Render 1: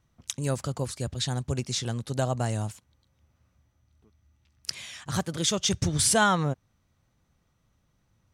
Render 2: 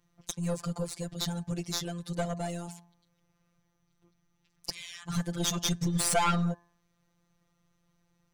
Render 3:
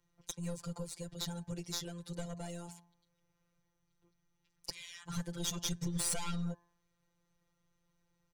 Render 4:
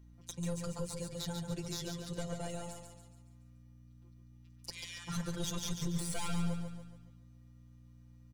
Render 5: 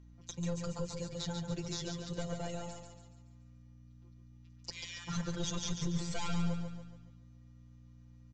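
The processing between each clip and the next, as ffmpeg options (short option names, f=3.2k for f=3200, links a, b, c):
-af "bandreject=f=212.4:t=h:w=4,bandreject=f=424.8:t=h:w=4,bandreject=f=637.2:t=h:w=4,bandreject=f=849.6:t=h:w=4,bandreject=f=1.062k:t=h:w=4,bandreject=f=1.2744k:t=h:w=4,bandreject=f=1.4868k:t=h:w=4,bandreject=f=1.6992k:t=h:w=4,afftfilt=real='hypot(re,im)*cos(PI*b)':imag='0':win_size=1024:overlap=0.75,aeval=exprs='(tanh(14.1*val(0)+0.6)-tanh(0.6))/14.1':c=same,volume=5dB"
-filter_complex "[0:a]aecho=1:1:2.1:0.34,acrossover=split=250|3000[a][b][c];[b]acompressor=threshold=-38dB:ratio=6[d];[a][d][c]amix=inputs=3:normalize=0,volume=-6dB"
-af "alimiter=level_in=5.5dB:limit=-24dB:level=0:latency=1:release=41,volume=-5.5dB,aeval=exprs='val(0)+0.00126*(sin(2*PI*60*n/s)+sin(2*PI*2*60*n/s)/2+sin(2*PI*3*60*n/s)/3+sin(2*PI*4*60*n/s)/4+sin(2*PI*5*60*n/s)/5)':c=same,aecho=1:1:141|282|423|564|705|846:0.501|0.231|0.106|0.0488|0.0224|0.0103,volume=2.5dB"
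-af "volume=1dB" -ar 16000 -c:a libvorbis -b:a 96k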